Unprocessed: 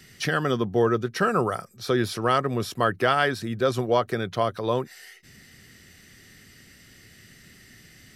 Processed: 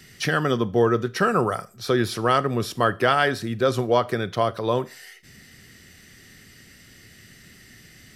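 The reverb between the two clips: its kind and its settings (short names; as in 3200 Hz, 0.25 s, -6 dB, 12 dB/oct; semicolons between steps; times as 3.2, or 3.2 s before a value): Schroeder reverb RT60 0.36 s, combs from 26 ms, DRR 17 dB; gain +2 dB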